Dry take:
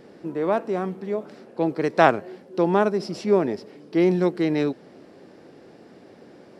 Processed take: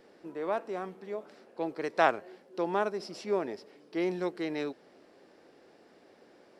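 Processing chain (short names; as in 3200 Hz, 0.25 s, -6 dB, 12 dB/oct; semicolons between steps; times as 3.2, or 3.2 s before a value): bell 130 Hz -12 dB 2.5 oct; gain -6.5 dB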